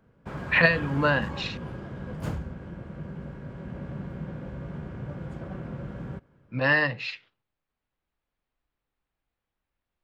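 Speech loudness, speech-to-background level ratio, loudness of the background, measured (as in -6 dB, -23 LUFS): -24.0 LUFS, 13.5 dB, -37.5 LUFS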